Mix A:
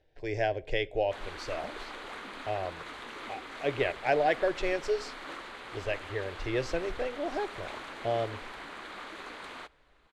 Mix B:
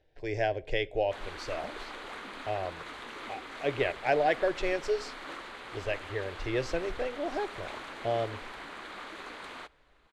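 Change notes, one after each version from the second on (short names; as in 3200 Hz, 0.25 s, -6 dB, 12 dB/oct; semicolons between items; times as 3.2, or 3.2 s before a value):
none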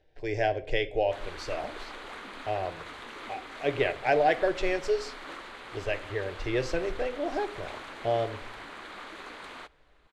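speech: send +9.5 dB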